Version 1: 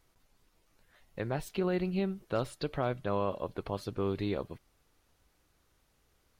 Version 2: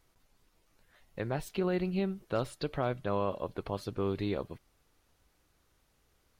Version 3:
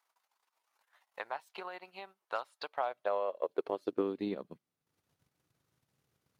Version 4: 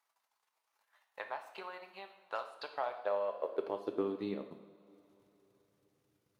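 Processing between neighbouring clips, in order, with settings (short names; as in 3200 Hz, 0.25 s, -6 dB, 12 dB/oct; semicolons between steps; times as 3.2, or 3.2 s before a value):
nothing audible
transient shaper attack +9 dB, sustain -10 dB; high-pass sweep 910 Hz -> 130 Hz, 2.64–4.94; gain -8.5 dB
reverb, pre-delay 3 ms, DRR 5 dB; gain -3 dB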